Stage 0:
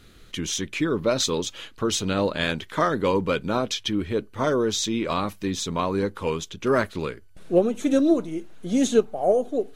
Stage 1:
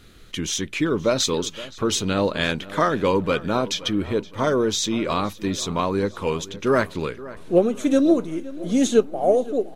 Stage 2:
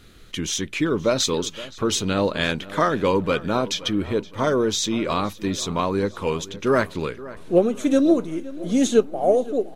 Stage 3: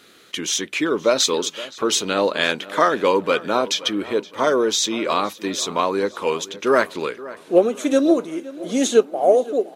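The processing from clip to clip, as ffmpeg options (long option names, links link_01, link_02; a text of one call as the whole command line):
ffmpeg -i in.wav -filter_complex "[0:a]asplit=2[link_01][link_02];[link_02]adelay=520,lowpass=frequency=3200:poles=1,volume=-17.5dB,asplit=2[link_03][link_04];[link_04]adelay=520,lowpass=frequency=3200:poles=1,volume=0.49,asplit=2[link_05][link_06];[link_06]adelay=520,lowpass=frequency=3200:poles=1,volume=0.49,asplit=2[link_07][link_08];[link_08]adelay=520,lowpass=frequency=3200:poles=1,volume=0.49[link_09];[link_01][link_03][link_05][link_07][link_09]amix=inputs=5:normalize=0,volume=2dB" out.wav
ffmpeg -i in.wav -af anull out.wav
ffmpeg -i in.wav -af "highpass=340,volume=4dB" out.wav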